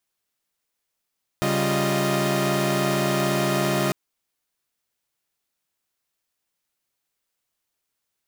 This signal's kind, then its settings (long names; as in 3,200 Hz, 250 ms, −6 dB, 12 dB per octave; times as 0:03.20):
held notes C#3/G3/F4/D#5 saw, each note −23.5 dBFS 2.50 s